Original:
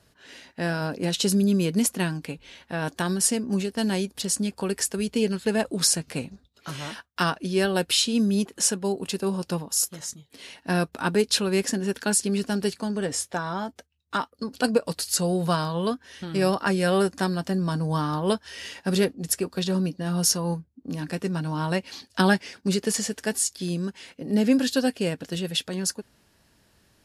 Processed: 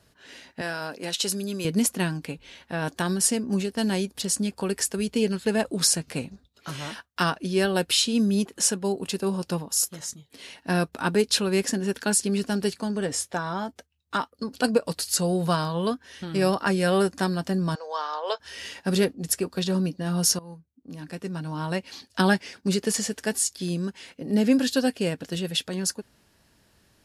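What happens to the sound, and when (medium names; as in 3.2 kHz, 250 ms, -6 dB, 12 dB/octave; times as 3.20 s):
0.61–1.65 s: high-pass 690 Hz 6 dB/octave
17.75–18.40 s: Chebyshev band-pass 480–6700 Hz, order 4
20.39–23.04 s: fade in equal-power, from -18.5 dB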